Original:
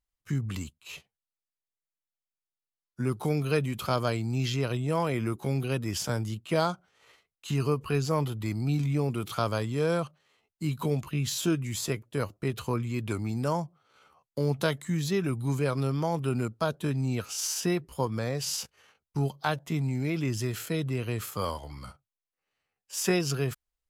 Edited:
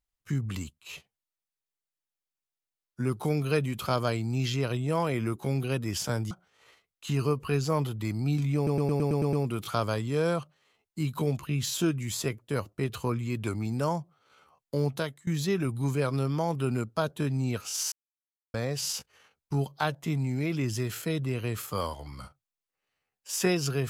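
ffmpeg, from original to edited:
-filter_complex "[0:a]asplit=12[a][b][c][d][e][f][g][h][i][j][k][l];[a]atrim=end=6.312[m];[b]atrim=start=6.718:end=9.082[n];[c]atrim=start=8.968:end=9.082[o];[d]atrim=start=8.968:end=9.082[p];[e]atrim=start=8.968:end=9.082[q];[f]atrim=start=8.968:end=9.082[r];[g]atrim=start=8.968:end=9.082[s];[h]atrim=start=8.968:end=9.082[t];[i]atrim=start=8.968:end=14.91,asetpts=PTS-STARTPTS,afade=t=out:st=5.492:d=0.45:silence=0.0841395[u];[j]atrim=start=14.91:end=17.56,asetpts=PTS-STARTPTS,afade=t=in:d=0.004:c=hsin:silence=0.0841395,afade=t=out:st=2.646:d=0.004:c=hsin[v];[k]atrim=start=17.56:end=18.18,asetpts=PTS-STARTPTS,volume=0[w];[l]atrim=start=18.18,asetpts=PTS-STARTPTS,afade=t=in:d=0.004:c=hsin[x];[m][n]acrossfade=d=0.004:c1=hsin:c2=hsin[y];[y][o]acrossfade=d=0.004:c1=hsin:c2=hsin[z];[z][p]acrossfade=d=0.004:c1=hsin:c2=hsin[aa];[aa][q]acrossfade=d=0.004:c1=hsin:c2=hsin[ab];[ab][r]acrossfade=d=0.004:c1=hsin:c2=hsin[ac];[ac][s]acrossfade=d=0.004:c1=hsin:c2=hsin[ad];[ad][t]acrossfade=d=0.004:c1=hsin:c2=hsin[ae];[u][v][w][x]concat=n=4:v=0:a=1[af];[ae][af]acrossfade=d=0.004:c1=hsin:c2=hsin"

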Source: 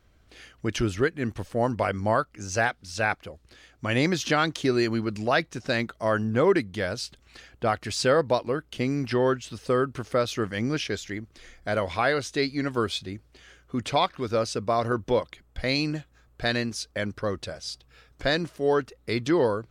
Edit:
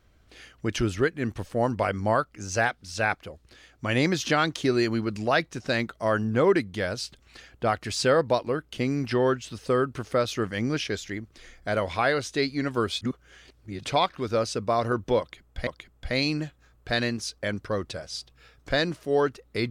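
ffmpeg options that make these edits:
-filter_complex "[0:a]asplit=4[a][b][c][d];[a]atrim=end=13.012[e];[b]atrim=start=13.008:end=13.842,asetpts=PTS-STARTPTS,areverse[f];[c]atrim=start=13.838:end=15.672[g];[d]atrim=start=15.198[h];[e][f]acrossfade=d=0.004:c1=hsin:c2=hsin[i];[i][g]acrossfade=d=0.004:c1=hsin:c2=hsin[j];[j][h]acrossfade=d=0.004:c1=hsin:c2=hsin"

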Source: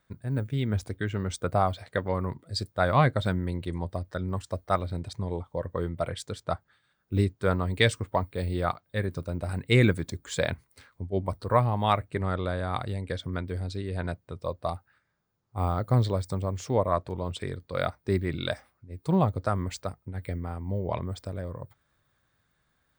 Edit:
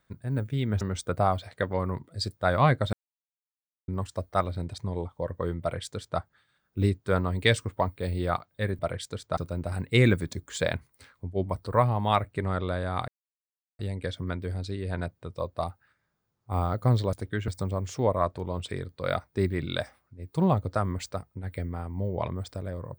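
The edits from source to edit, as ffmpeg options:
-filter_complex "[0:a]asplit=9[a][b][c][d][e][f][g][h][i];[a]atrim=end=0.812[j];[b]atrim=start=1.158:end=3.28,asetpts=PTS-STARTPTS,afade=t=out:st=2.118:d=0.004:c=hsin[k];[c]atrim=start=3.28:end=4.23,asetpts=PTS-STARTPTS,volume=0[l];[d]atrim=start=4.23:end=9.142,asetpts=PTS-STARTPTS,afade=t=in:d=0.004:c=hsin[m];[e]atrim=start=5.958:end=6.542[n];[f]atrim=start=9.138:end=12.85,asetpts=PTS-STARTPTS,afade=t=out:st=3.708:d=0.004:c=hsin,apad=pad_dur=0.71[o];[g]atrim=start=12.85:end=16.192,asetpts=PTS-STARTPTS,afade=t=in:d=0.004:c=hsin[p];[h]atrim=start=0.808:end=1.162[q];[i]atrim=start=16.188[r];[k][l][m]concat=n=3:v=0:a=1[s];[j][s]acrossfade=d=0.004:c1=hsin:c2=hsin[t];[t][n]acrossfade=d=0.004:c1=hsin:c2=hsin[u];[o][p]concat=n=2:v=0:a=1[v];[u][v]acrossfade=d=0.004:c1=hsin:c2=hsin[w];[w][q]acrossfade=d=0.004:c1=hsin:c2=hsin[x];[x][r]acrossfade=d=0.004:c1=hsin:c2=hsin"

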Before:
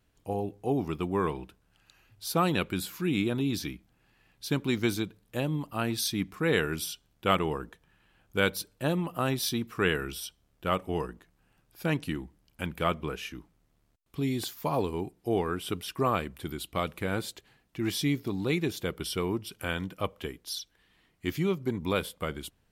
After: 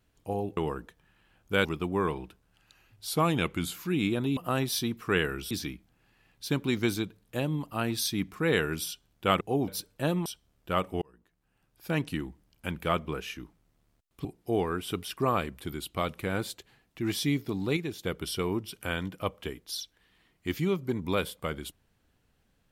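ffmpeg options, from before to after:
-filter_complex "[0:a]asplit=14[a][b][c][d][e][f][g][h][i][j][k][l][m][n];[a]atrim=end=0.572[o];[b]atrim=start=7.408:end=8.492[p];[c]atrim=start=0.838:end=2.264[q];[d]atrim=start=2.26:end=2.89,asetpts=PTS-STARTPTS,asetrate=41013,aresample=44100,atrim=end_sample=29874,asetpts=PTS-STARTPTS[r];[e]atrim=start=2.886:end=3.512[s];[f]atrim=start=9.068:end=10.212[t];[g]atrim=start=3.508:end=7.412[u];[h]atrim=start=0.568:end=0.842[v];[i]atrim=start=8.488:end=9.072[w];[j]atrim=start=10.208:end=10.97,asetpts=PTS-STARTPTS,afade=t=out:st=0.758:d=0.004:c=hsin[x];[k]atrim=start=10.97:end=14.202,asetpts=PTS-STARTPTS,afade=t=in:d=1.01[y];[l]atrim=start=15.028:end=18.552[z];[m]atrim=start=18.548:end=18.832,asetpts=PTS-STARTPTS,volume=-5dB[aa];[n]atrim=start=18.828[ab];[o][p]acrossfade=d=0.004:c1=hsin:c2=hsin[ac];[ac][q]acrossfade=d=0.004:c1=hsin:c2=hsin[ad];[ad][r]acrossfade=d=0.004:c1=hsin:c2=hsin[ae];[ae][s]acrossfade=d=0.004:c1=hsin:c2=hsin[af];[af][t]acrossfade=d=0.004:c1=hsin:c2=hsin[ag];[ag][u]acrossfade=d=0.004:c1=hsin:c2=hsin[ah];[ah][v]acrossfade=d=0.004:c1=hsin:c2=hsin[ai];[ai][w]acrossfade=d=0.004:c1=hsin:c2=hsin[aj];[x][y]concat=n=2:v=0:a=1[ak];[aj][ak]acrossfade=d=0.004:c1=hsin:c2=hsin[al];[al][z]acrossfade=d=0.004:c1=hsin:c2=hsin[am];[am][aa]acrossfade=d=0.004:c1=hsin:c2=hsin[an];[an][ab]acrossfade=d=0.004:c1=hsin:c2=hsin"

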